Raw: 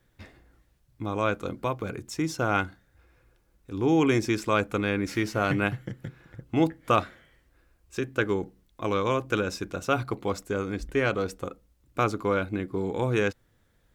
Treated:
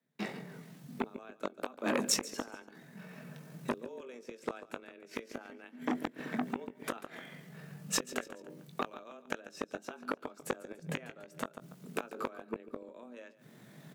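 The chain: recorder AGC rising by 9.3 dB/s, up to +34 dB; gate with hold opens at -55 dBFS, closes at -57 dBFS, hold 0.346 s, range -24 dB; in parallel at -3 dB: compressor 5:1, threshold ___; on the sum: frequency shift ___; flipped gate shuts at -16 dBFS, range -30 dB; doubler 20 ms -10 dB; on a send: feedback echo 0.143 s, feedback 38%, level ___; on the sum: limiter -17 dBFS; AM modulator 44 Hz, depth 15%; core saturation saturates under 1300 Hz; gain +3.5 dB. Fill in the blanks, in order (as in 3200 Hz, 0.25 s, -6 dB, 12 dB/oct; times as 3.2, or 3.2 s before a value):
-34 dBFS, +120 Hz, -17 dB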